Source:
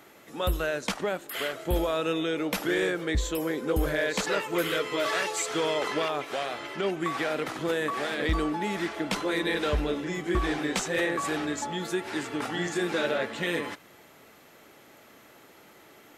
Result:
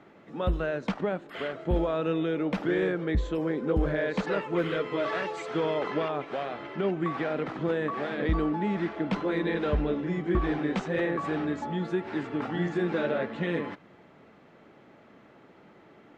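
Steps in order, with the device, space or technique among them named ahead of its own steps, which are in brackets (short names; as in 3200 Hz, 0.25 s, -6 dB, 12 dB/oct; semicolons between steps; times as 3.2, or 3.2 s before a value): phone in a pocket (LPF 4000 Hz 12 dB/oct; bell 180 Hz +6 dB 1 oct; high shelf 2200 Hz -11 dB)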